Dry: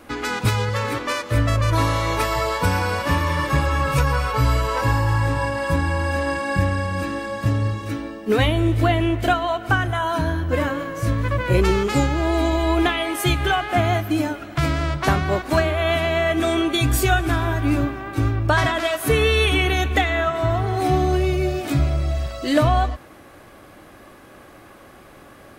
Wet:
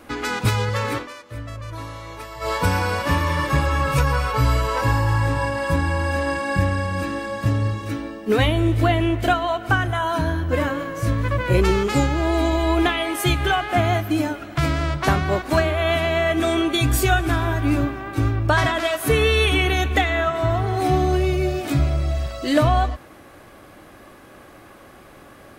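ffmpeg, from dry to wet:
-filter_complex "[0:a]asplit=3[a][b][c];[a]atrim=end=1.08,asetpts=PTS-STARTPTS,afade=t=out:st=0.96:d=0.12:c=qsin:silence=0.199526[d];[b]atrim=start=1.08:end=2.4,asetpts=PTS-STARTPTS,volume=-14dB[e];[c]atrim=start=2.4,asetpts=PTS-STARTPTS,afade=t=in:d=0.12:c=qsin:silence=0.199526[f];[d][e][f]concat=n=3:v=0:a=1"

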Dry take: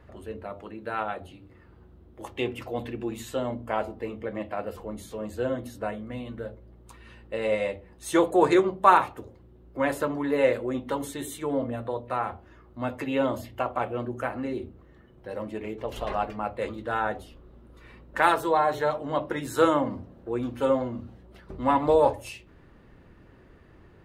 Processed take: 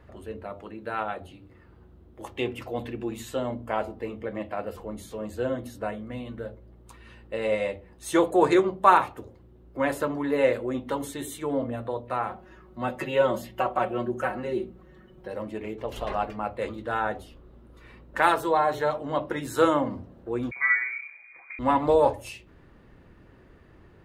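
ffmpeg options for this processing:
-filter_complex "[0:a]asettb=1/sr,asplit=3[a][b][c];[a]atrim=end=12.304[d];[b]atrim=start=12.3:end=15.28,asetpts=PTS-STARTPTS,afade=t=in:d=0.004:c=qsin,afade=t=out:st=2.976:d=0.004:c=qsin,aecho=1:1:5.4:0.96,atrim=end_sample=131418[e];[c]atrim=start=15.276[f];[d][e]acrossfade=d=0.004:c1=hsin:c2=qsin[g];[g][f]acrossfade=d=0.004:c1=qsin:c2=hsin,asettb=1/sr,asplit=3[h][i][j];[h]atrim=end=20.514[k];[i]atrim=start=20.51:end=21.59,asetpts=PTS-STARTPTS,afade=t=in:d=0.004:c=qsin,afade=t=out:st=1.076:d=0.004:c=qsin,lowpass=f=2.1k:t=q:w=0.5098,lowpass=f=2.1k:t=q:w=0.6013,lowpass=f=2.1k:t=q:w=0.9,lowpass=f=2.1k:t=q:w=2.563,afreqshift=-2500[l];[j]atrim=start=21.586[m];[k][l]acrossfade=d=0.004:c1=hsin:c2=qsin[n];[n][m]acrossfade=d=0.004:c1=qsin:c2=hsin"

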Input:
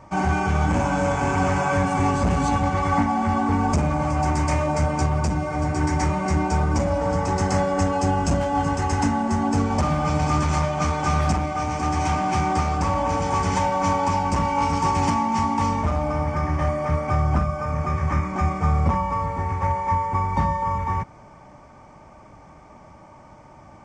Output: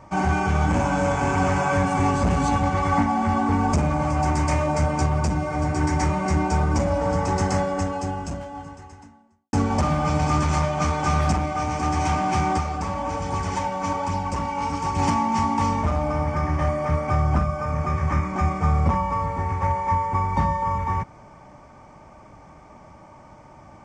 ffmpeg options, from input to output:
-filter_complex "[0:a]asplit=3[a][b][c];[a]afade=t=out:st=12.57:d=0.02[d];[b]flanger=delay=0.2:depth=4.8:regen=62:speed=1.2:shape=sinusoidal,afade=t=in:st=12.57:d=0.02,afade=t=out:st=14.98:d=0.02[e];[c]afade=t=in:st=14.98:d=0.02[f];[d][e][f]amix=inputs=3:normalize=0,asplit=2[g][h];[g]atrim=end=9.53,asetpts=PTS-STARTPTS,afade=t=out:st=7.41:d=2.12:c=qua[i];[h]atrim=start=9.53,asetpts=PTS-STARTPTS,afade=t=in:d=0.004:c=hsin[j];[i][j]concat=n=2:v=0:a=1"

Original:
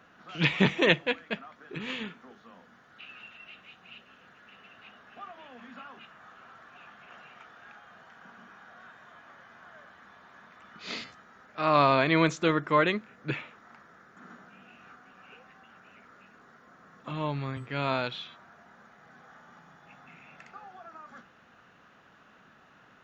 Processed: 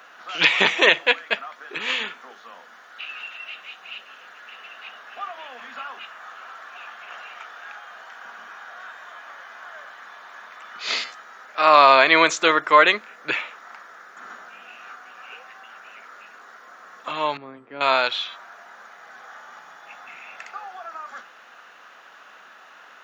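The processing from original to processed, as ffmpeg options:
-filter_complex "[0:a]asettb=1/sr,asplit=3[a][b][c];[a]atrim=end=17.374[d];[b]atrim=start=17.37:end=17.81,asetpts=PTS-STARTPTS,afade=t=in:d=0.004:c=qsin,afade=t=out:st=0.436:d=0.004:c=qsin,bandpass=f=240:t=q:w=1.1[e];[c]atrim=start=17.806[f];[d][e]acrossfade=d=0.004:c1=hsin:c2=qsin[g];[g][f]acrossfade=d=0.004:c1=qsin:c2=hsin,highpass=640,highshelf=f=6.5k:g=4.5,alimiter=level_in=13dB:limit=-1dB:release=50:level=0:latency=1,volume=-1dB"

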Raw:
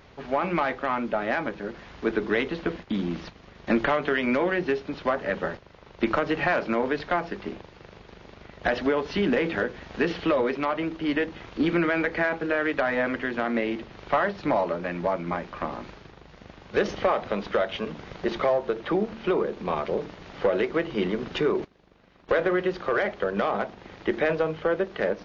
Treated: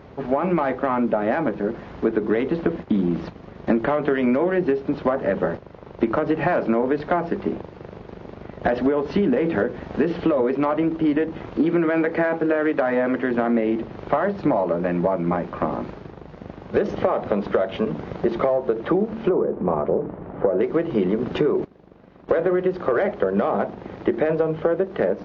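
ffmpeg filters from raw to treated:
-filter_complex "[0:a]asettb=1/sr,asplit=3[a][b][c];[a]atrim=end=11.584[d];[b]atrim=start=11.58:end=13.31,asetpts=PTS-STARTPTS,afade=t=in:d=0.004:c=qsin,afade=t=out:st=1.726:d=0.004:c=qsin,highpass=f=160:p=1[e];[c]atrim=start=13.306[f];[d][e]acrossfade=d=0.004:c1=hsin:c2=qsin[g];[g][f]acrossfade=d=0.004:c1=qsin:c2=hsin,asettb=1/sr,asplit=3[h][i][j];[h]atrim=end=19.294[k];[i]atrim=start=19.29:end=20.61,asetpts=PTS-STARTPTS,afade=t=in:d=0.004:c=qsin,afade=t=out:st=1.316:d=0.004:c=qsin,lowpass=1.3k[l];[j]atrim=start=20.606[m];[k][l]acrossfade=d=0.004:c1=hsin:c2=qsin[n];[n][m]acrossfade=d=0.004:c1=qsin:c2=hsin,highpass=f=110:p=1,tiltshelf=f=1.4k:g=9,acompressor=threshold=-20dB:ratio=6,volume=3.5dB"

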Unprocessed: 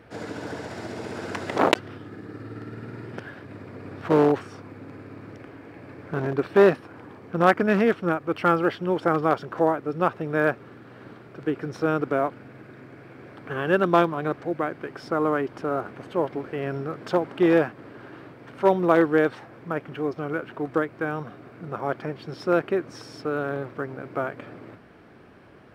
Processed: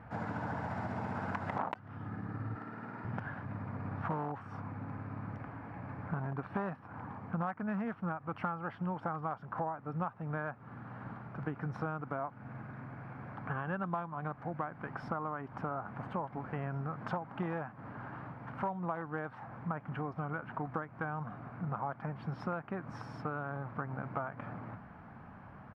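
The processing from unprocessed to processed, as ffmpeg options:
-filter_complex "[0:a]asettb=1/sr,asplit=3[a][b][c];[a]atrim=end=2.554[d];[b]atrim=start=2.55:end=3.05,asetpts=PTS-STARTPTS,afade=t=in:d=0.004:c=qsin,afade=t=out:st=0.496:d=0.004:c=qsin,highpass=290[e];[c]atrim=start=3.046[f];[d][e]acrossfade=d=0.004:c1=hsin:c2=qsin[g];[g][f]acrossfade=d=0.004:c1=qsin:c2=hsin,firequalizer=gain_entry='entry(200,0);entry(360,-17);entry(830,2);entry(1900,-8);entry(3600,-19);entry(8400,-23)':delay=0.05:min_phase=1,acompressor=threshold=-36dB:ratio=12,volume=3dB"

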